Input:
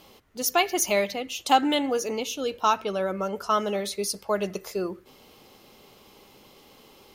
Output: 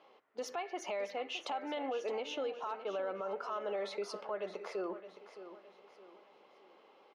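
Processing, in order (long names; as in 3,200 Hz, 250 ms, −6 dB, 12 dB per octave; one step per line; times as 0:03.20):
Chebyshev high-pass filter 530 Hz, order 2
noise gate −46 dBFS, range −10 dB
low-pass filter 2,000 Hz 12 dB per octave
downward compressor 6 to 1, threshold −36 dBFS, peak gain reduction 19.5 dB
brickwall limiter −34.5 dBFS, peak gain reduction 11.5 dB
repeating echo 616 ms, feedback 39%, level −12.5 dB
level +4.5 dB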